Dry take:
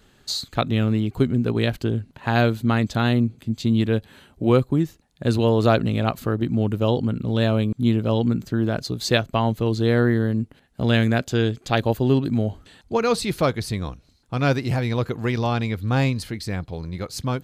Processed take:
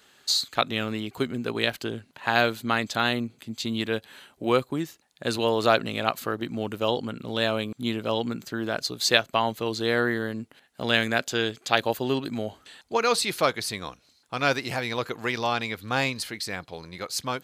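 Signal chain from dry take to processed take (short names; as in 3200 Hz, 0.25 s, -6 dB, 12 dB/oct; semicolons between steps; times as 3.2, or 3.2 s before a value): HPF 1000 Hz 6 dB/oct; gain +3.5 dB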